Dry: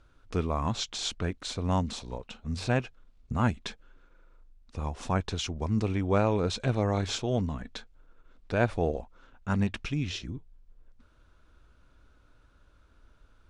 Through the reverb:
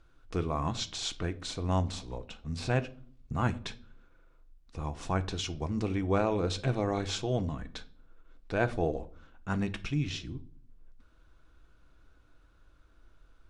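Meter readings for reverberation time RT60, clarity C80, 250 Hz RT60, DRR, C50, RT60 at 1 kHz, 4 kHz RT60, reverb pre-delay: 0.50 s, 23.5 dB, 0.85 s, 9.0 dB, 18.5 dB, 0.45 s, 0.35 s, 3 ms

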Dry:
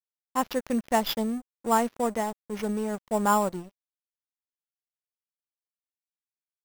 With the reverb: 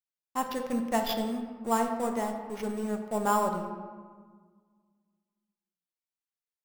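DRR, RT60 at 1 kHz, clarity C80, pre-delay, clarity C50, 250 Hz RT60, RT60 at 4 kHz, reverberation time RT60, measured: 4.0 dB, 1.6 s, 7.5 dB, 3 ms, 6.0 dB, 2.2 s, 0.90 s, 1.6 s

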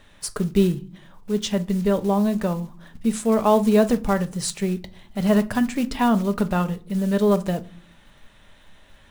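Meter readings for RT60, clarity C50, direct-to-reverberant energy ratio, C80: not exponential, 19.0 dB, 8.5 dB, 25.5 dB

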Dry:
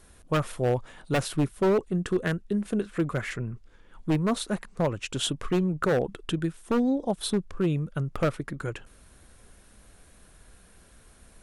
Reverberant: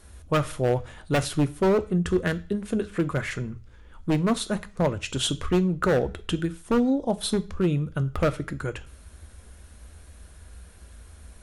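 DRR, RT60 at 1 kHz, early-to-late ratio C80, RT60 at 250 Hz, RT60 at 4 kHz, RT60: 11.5 dB, 0.45 s, 24.0 dB, 0.45 s, 0.40 s, 0.45 s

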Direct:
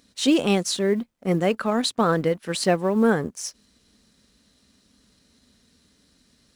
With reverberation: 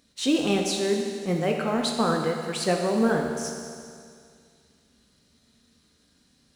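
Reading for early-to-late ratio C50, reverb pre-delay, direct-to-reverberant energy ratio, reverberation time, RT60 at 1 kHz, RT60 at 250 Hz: 3.0 dB, 13 ms, 1.0 dB, 2.2 s, 2.2 s, 2.2 s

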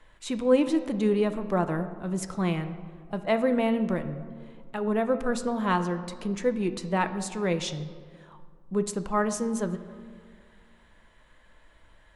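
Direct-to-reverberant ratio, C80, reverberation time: 8.5 dB, 13.0 dB, 1.9 s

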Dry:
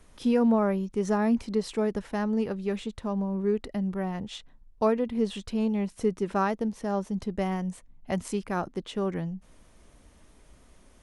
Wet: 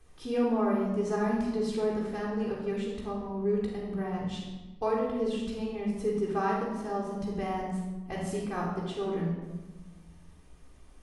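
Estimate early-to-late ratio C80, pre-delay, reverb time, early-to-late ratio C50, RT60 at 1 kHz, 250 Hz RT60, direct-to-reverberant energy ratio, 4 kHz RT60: 4.0 dB, 3 ms, 1.2 s, 1.5 dB, 1.1 s, 1.6 s, -5.5 dB, 0.80 s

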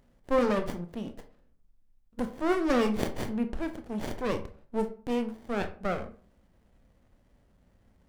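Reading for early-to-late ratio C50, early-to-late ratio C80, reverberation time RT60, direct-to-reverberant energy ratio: 12.5 dB, 17.5 dB, 0.45 s, 7.5 dB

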